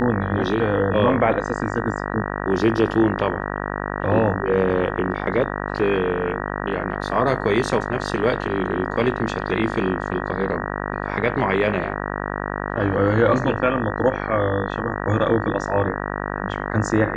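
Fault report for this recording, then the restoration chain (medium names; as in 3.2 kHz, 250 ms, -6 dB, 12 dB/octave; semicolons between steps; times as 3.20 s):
buzz 50 Hz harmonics 38 -27 dBFS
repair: de-hum 50 Hz, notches 38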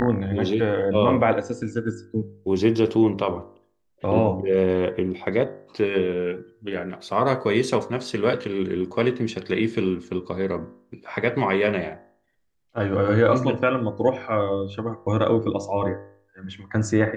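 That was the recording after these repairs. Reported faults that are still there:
nothing left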